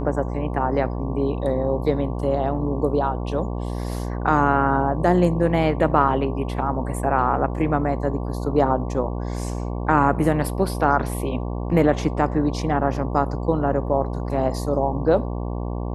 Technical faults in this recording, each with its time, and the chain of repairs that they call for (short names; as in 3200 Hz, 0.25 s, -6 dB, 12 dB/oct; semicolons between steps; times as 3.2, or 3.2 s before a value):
buzz 60 Hz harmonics 19 -27 dBFS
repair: de-hum 60 Hz, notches 19